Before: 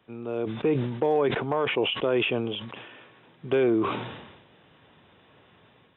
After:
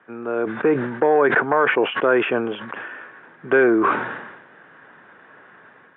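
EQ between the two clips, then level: HPF 210 Hz 12 dB/oct; synth low-pass 1600 Hz, resonance Q 4.6; +6.0 dB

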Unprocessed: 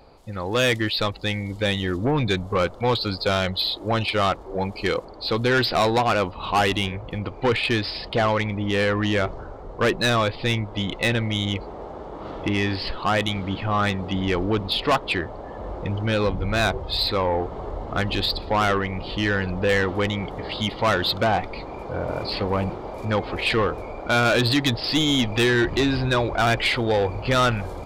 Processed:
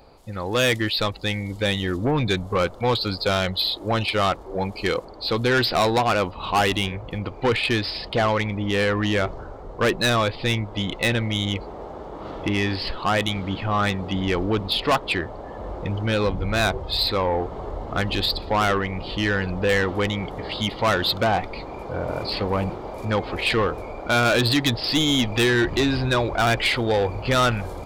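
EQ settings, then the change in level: high shelf 8500 Hz +6 dB; 0.0 dB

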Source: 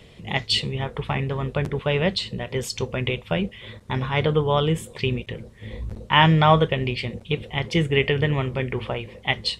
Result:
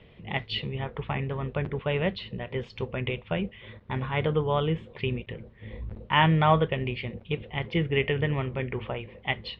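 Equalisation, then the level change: LPF 3100 Hz 24 dB/oct; -5.0 dB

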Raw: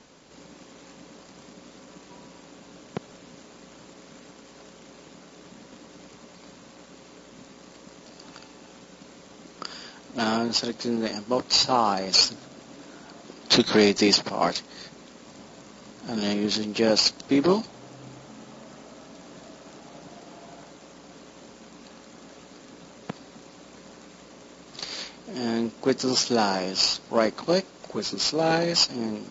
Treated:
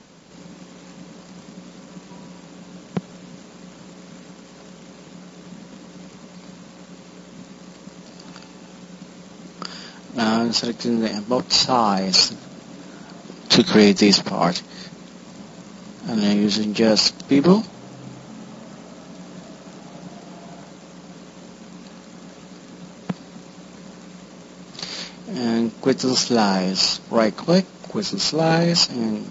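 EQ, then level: bell 180 Hz +10.5 dB 0.46 oct; +3.5 dB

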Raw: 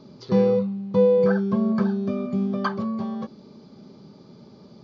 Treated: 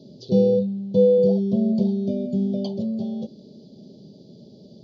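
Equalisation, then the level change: HPF 79 Hz; elliptic band-stop 650–3300 Hz, stop band 60 dB; +2.0 dB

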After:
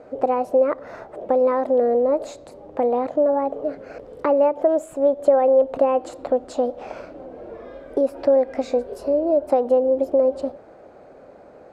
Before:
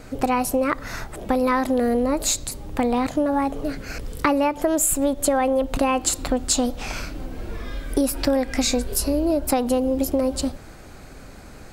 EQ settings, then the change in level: band-pass 560 Hz, Q 2.6; +7.0 dB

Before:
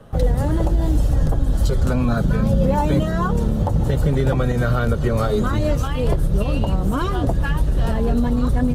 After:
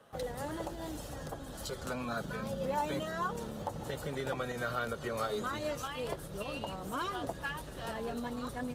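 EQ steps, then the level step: HPF 890 Hz 6 dB/oct; -7.5 dB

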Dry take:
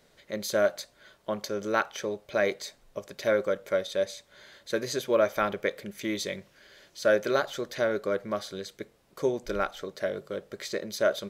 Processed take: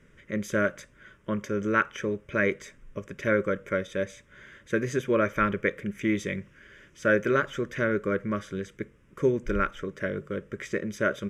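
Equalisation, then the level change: air absorption 71 m; low shelf 230 Hz +6.5 dB; fixed phaser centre 1800 Hz, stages 4; +5.5 dB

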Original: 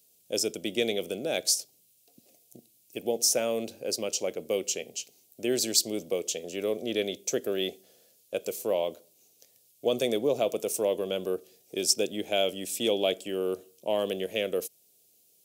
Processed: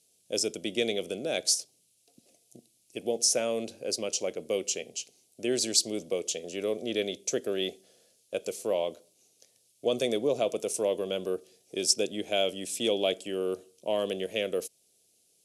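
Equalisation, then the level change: elliptic low-pass 11000 Hz, stop band 70 dB; notch 830 Hz, Q 22; 0.0 dB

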